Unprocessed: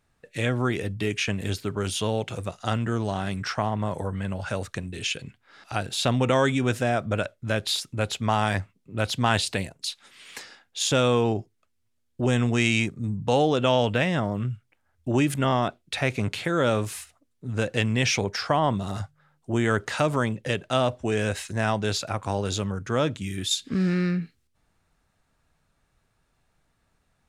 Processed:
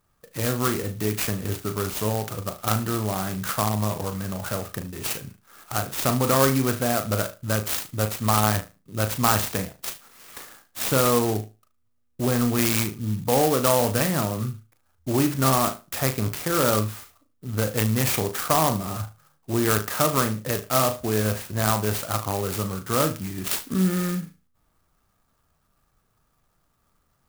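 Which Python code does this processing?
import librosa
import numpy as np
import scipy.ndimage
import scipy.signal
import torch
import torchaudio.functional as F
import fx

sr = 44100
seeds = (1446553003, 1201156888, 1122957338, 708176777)

p1 = scipy.signal.sosfilt(scipy.signal.butter(2, 7300.0, 'lowpass', fs=sr, output='sos'), x)
p2 = fx.peak_eq(p1, sr, hz=1200.0, db=9.0, octaves=0.28)
p3 = p2 + fx.room_flutter(p2, sr, wall_m=6.4, rt60_s=0.28, dry=0)
y = fx.clock_jitter(p3, sr, seeds[0], jitter_ms=0.094)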